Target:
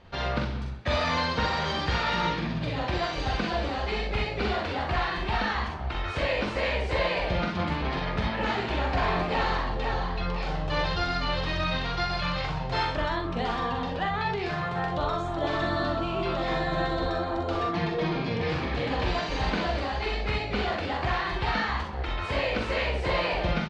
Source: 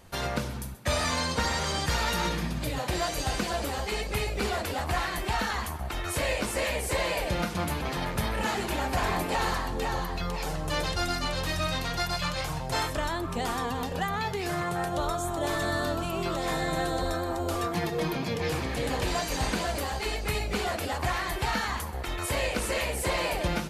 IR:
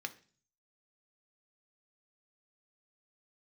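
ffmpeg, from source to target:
-filter_complex "[0:a]lowpass=f=4.3k:w=0.5412,lowpass=f=4.3k:w=1.3066,asplit=2[a][b];[b]aecho=0:1:44|62:0.562|0.473[c];[a][c]amix=inputs=2:normalize=0"

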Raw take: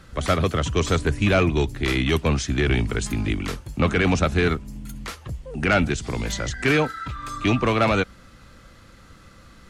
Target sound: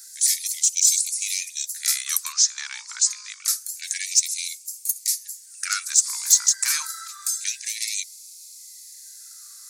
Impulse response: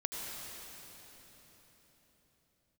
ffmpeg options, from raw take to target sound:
-filter_complex "[0:a]aexciter=amount=13.4:drive=9.3:freq=4.8k,asettb=1/sr,asplit=3[a][b][c];[a]atrim=end=2.324[d];[b]atrim=start=2.32:end=3.45,asetpts=PTS-STARTPTS,afade=t=in:d=0.004:c=qsin,afade=t=out:st=1.126:d=0.004:c=qsin,lowpass=f=6.5k:w=0.5412,lowpass=f=6.5k:w=1.3066[e];[c]atrim=start=3.446[f];[d][e]acrossfade=d=0.004:c1=hsin:c2=qsin[g];[g][f]acrossfade=d=0.004:c1=qsin:c2=hsin,afftfilt=real='re*gte(b*sr/1024,840*pow(2100/840,0.5+0.5*sin(2*PI*0.27*pts/sr)))':imag='im*gte(b*sr/1024,840*pow(2100/840,0.5+0.5*sin(2*PI*0.27*pts/sr)))':win_size=1024:overlap=0.75,volume=-7.5dB"

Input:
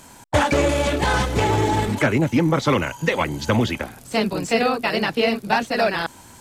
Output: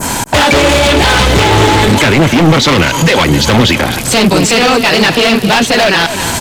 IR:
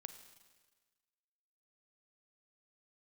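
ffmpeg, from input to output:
-af "asoftclip=type=hard:threshold=-22.5dB,acompressor=threshold=-39dB:ratio=3,adynamicequalizer=threshold=0.00251:dfrequency=3400:dqfactor=0.93:tfrequency=3400:tqfactor=0.93:attack=5:release=100:ratio=0.375:range=3:mode=boostabove:tftype=bell,aecho=1:1:257|514|771|1028:0.178|0.0818|0.0376|0.0173,alimiter=level_in=31dB:limit=-1dB:release=50:level=0:latency=1,volume=-1dB"

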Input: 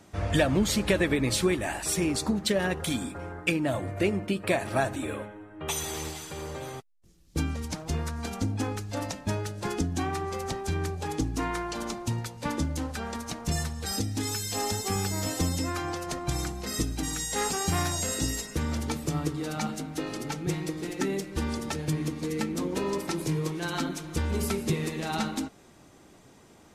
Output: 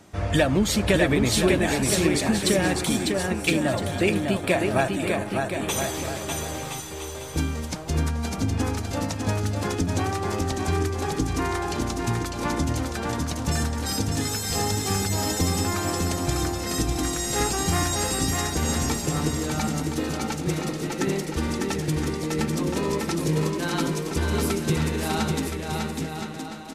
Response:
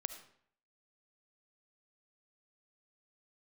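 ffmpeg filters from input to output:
-af "aecho=1:1:600|1020|1314|1520|1664:0.631|0.398|0.251|0.158|0.1,volume=3dB"

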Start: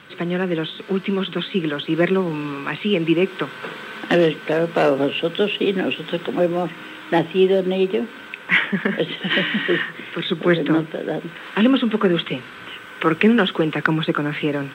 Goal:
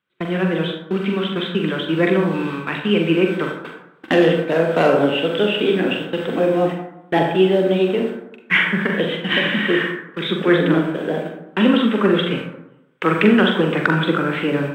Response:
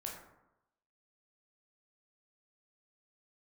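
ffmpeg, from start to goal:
-filter_complex "[0:a]agate=range=-35dB:threshold=-28dB:ratio=16:detection=peak,asplit=2[a][b];[1:a]atrim=start_sample=2205,adelay=43[c];[b][c]afir=irnorm=-1:irlink=0,volume=-0.5dB[d];[a][d]amix=inputs=2:normalize=0"

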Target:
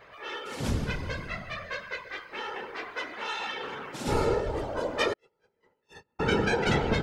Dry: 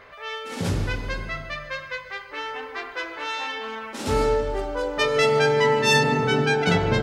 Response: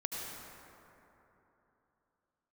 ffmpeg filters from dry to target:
-filter_complex "[0:a]asettb=1/sr,asplit=3[a][b][c];[a]atrim=end=5.134[d];[b]atrim=start=5.13:end=6.2,asetpts=PTS-STARTPTS,afade=t=in:d=0.004:c=qsin,afade=t=out:st=1.066:d=0.004:c=qsin,agate=range=-53dB:threshold=-12dB:ratio=16:detection=peak[e];[c]atrim=start=6.196[f];[d][e]acrossfade=d=0.004:c1=hsin:c2=qsin[g];[g][f]acrossfade=d=0.004:c1=qsin:c2=hsin,afftfilt=real='hypot(re,im)*cos(2*PI*random(0))':imag='hypot(re,im)*sin(2*PI*random(1))':win_size=512:overlap=0.75,volume=1.5dB"

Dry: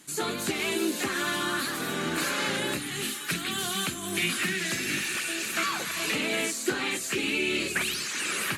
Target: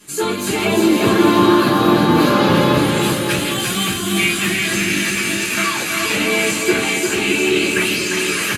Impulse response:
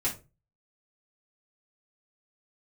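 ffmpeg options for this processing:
-filter_complex "[0:a]asettb=1/sr,asplit=3[a][b][c];[a]atrim=end=0.644[d];[b]atrim=start=0.64:end=2.77,asetpts=PTS-STARTPTS,afade=t=in:d=0.004:c=qsin,afade=t=out:st=2.126:d=0.004:c=qsin,equalizer=f=125:t=o:w=1:g=11,equalizer=f=250:t=o:w=1:g=3,equalizer=f=500:t=o:w=1:g=8,equalizer=f=1k:t=o:w=1:g=7,equalizer=f=2k:t=o:w=1:g=-5,equalizer=f=4k:t=o:w=1:g=4,equalizer=f=8k:t=o:w=1:g=-12[e];[c]atrim=start=2.766[f];[d][e]acrossfade=d=0.004:c1=hsin:c2=qsin[g];[g][f]acrossfade=d=0.004:c1=qsin:c2=hsin,aecho=1:1:350|612.5|809.4|957|1068:0.631|0.398|0.251|0.158|0.1[h];[1:a]atrim=start_sample=2205,asetrate=52920,aresample=44100[i];[h][i]afir=irnorm=-1:irlink=0,volume=3.5dB"

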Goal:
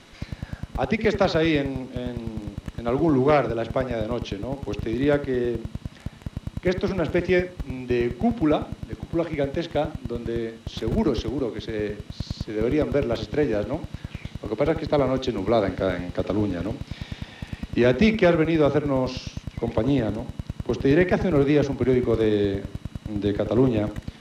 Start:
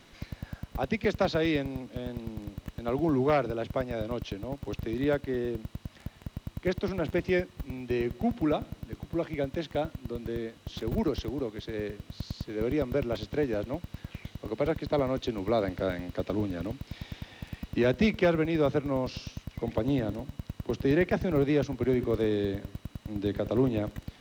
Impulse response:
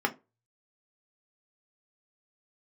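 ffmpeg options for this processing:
-filter_complex "[0:a]lowpass=f=12k:w=0.5412,lowpass=f=12k:w=1.3066,asplit=2[a][b];[1:a]atrim=start_sample=2205,adelay=64[c];[b][c]afir=irnorm=-1:irlink=0,volume=-22dB[d];[a][d]amix=inputs=2:normalize=0,volume=6dB"

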